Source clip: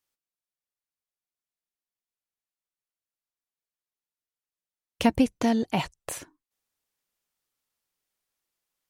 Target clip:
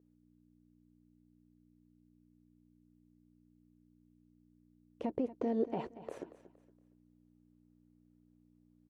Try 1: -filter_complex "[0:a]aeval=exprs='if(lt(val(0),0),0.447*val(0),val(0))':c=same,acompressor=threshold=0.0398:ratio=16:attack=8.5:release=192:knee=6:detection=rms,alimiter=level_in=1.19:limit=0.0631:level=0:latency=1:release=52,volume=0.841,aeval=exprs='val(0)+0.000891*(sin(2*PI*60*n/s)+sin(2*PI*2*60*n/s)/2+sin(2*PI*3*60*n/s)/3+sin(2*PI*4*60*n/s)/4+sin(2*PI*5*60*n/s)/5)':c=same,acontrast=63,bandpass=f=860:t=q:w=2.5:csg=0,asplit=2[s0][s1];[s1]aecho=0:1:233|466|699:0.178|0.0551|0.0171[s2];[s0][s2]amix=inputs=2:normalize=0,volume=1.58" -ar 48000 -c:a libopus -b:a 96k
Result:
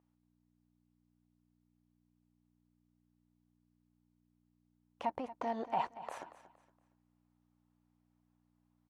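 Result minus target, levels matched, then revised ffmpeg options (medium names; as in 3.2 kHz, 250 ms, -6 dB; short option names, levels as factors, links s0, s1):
1 kHz band +11.0 dB
-filter_complex "[0:a]aeval=exprs='if(lt(val(0),0),0.447*val(0),val(0))':c=same,acompressor=threshold=0.0398:ratio=16:attack=8.5:release=192:knee=6:detection=rms,alimiter=level_in=1.19:limit=0.0631:level=0:latency=1:release=52,volume=0.841,aeval=exprs='val(0)+0.000891*(sin(2*PI*60*n/s)+sin(2*PI*2*60*n/s)/2+sin(2*PI*3*60*n/s)/3+sin(2*PI*4*60*n/s)/4+sin(2*PI*5*60*n/s)/5)':c=same,acontrast=63,bandpass=f=420:t=q:w=2.5:csg=0,asplit=2[s0][s1];[s1]aecho=0:1:233|466|699:0.178|0.0551|0.0171[s2];[s0][s2]amix=inputs=2:normalize=0,volume=1.58" -ar 48000 -c:a libopus -b:a 96k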